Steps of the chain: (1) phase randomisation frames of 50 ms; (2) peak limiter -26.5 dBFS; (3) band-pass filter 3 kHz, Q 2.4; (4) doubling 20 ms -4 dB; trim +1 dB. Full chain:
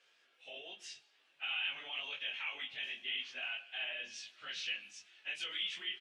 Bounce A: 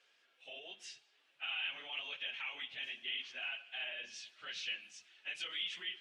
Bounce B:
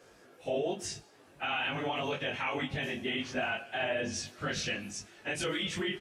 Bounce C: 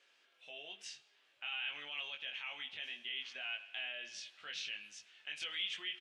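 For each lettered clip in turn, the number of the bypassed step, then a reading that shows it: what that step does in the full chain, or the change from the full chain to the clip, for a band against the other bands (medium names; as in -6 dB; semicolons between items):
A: 4, loudness change -1.5 LU; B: 3, 4 kHz band -16.0 dB; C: 1, 8 kHz band +2.0 dB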